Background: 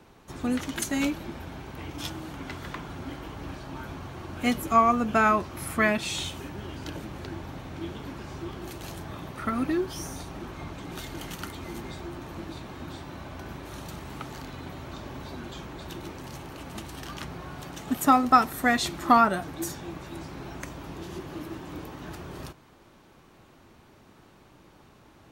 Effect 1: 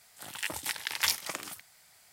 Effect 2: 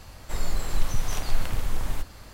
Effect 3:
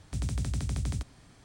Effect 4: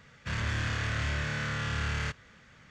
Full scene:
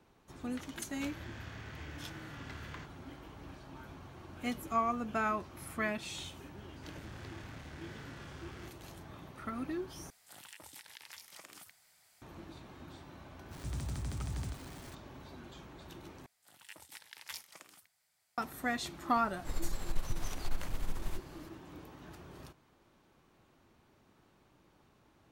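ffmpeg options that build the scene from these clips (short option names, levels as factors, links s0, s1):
-filter_complex "[4:a]asplit=2[s0][s1];[1:a]asplit=2[s2][s3];[0:a]volume=0.266[s4];[s0]lowpass=8200[s5];[s1]asoftclip=type=tanh:threshold=0.0141[s6];[s2]acompressor=threshold=0.00891:ratio=6:attack=3.2:release=140:knee=1:detection=peak[s7];[3:a]aeval=exprs='val(0)+0.5*0.0119*sgn(val(0))':c=same[s8];[2:a]aeval=exprs='(tanh(4.47*val(0)+0.55)-tanh(0.55))/4.47':c=same[s9];[s4]asplit=3[s10][s11][s12];[s10]atrim=end=10.104[s13];[s7]atrim=end=2.12,asetpts=PTS-STARTPTS,volume=0.447[s14];[s11]atrim=start=12.216:end=16.264[s15];[s3]atrim=end=2.12,asetpts=PTS-STARTPTS,volume=0.133[s16];[s12]atrim=start=18.376[s17];[s5]atrim=end=2.7,asetpts=PTS-STARTPTS,volume=0.141,afade=t=in:d=0.004:c=hsin,afade=t=out:st=2.696:d=0.004:c=hsin,adelay=740[s18];[s6]atrim=end=2.7,asetpts=PTS-STARTPTS,volume=0.251,afade=t=in:d=0.004:c=hsin,afade=t=out:st=2.696:d=0.004:c=hsin,adelay=6570[s19];[s8]atrim=end=1.44,asetpts=PTS-STARTPTS,volume=0.376,afade=t=in:d=0.004:c=hsin,afade=t=out:st=1.436:d=0.004:c=hsin,adelay=13510[s20];[s9]atrim=end=2.33,asetpts=PTS-STARTPTS,volume=0.398,afade=t=in:d=0.004:c=hsin,afade=t=out:st=2.326:d=0.004:c=hsin,adelay=19160[s21];[s13][s14]acrossfade=d=0.004:c1=hsin:c2=hsin[s22];[s22][s15]acrossfade=d=0.004:c1=hsin:c2=hsin[s23];[s23][s16]acrossfade=d=0.004:c1=hsin:c2=hsin[s24];[s24][s17]acrossfade=d=0.004:c1=hsin:c2=hsin[s25];[s25][s18][s19][s20][s21]amix=inputs=5:normalize=0"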